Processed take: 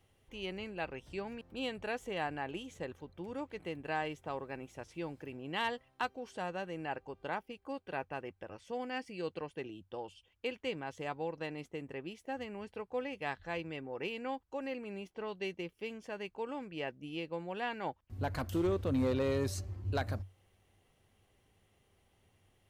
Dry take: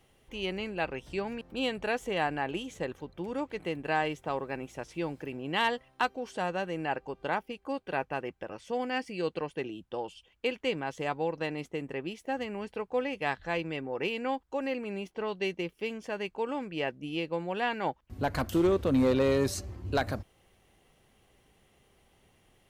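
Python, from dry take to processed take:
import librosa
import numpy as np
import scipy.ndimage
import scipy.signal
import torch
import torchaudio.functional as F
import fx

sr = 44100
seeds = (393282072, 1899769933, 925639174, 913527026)

y = fx.peak_eq(x, sr, hz=95.0, db=12.5, octaves=0.28)
y = y * librosa.db_to_amplitude(-7.0)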